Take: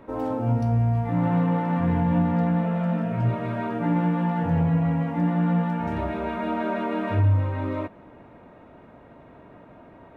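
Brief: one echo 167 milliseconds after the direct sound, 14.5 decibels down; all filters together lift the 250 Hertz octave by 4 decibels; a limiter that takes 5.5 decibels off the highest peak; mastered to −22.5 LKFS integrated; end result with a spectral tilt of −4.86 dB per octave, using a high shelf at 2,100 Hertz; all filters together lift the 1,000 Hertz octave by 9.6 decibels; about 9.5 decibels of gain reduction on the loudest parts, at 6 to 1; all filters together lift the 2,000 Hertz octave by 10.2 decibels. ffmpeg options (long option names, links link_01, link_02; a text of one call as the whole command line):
ffmpeg -i in.wav -af "equalizer=frequency=250:width_type=o:gain=5.5,equalizer=frequency=1000:width_type=o:gain=9,equalizer=frequency=2000:width_type=o:gain=6.5,highshelf=frequency=2100:gain=5.5,acompressor=threshold=-25dB:ratio=6,alimiter=limit=-21.5dB:level=0:latency=1,aecho=1:1:167:0.188,volume=7.5dB" out.wav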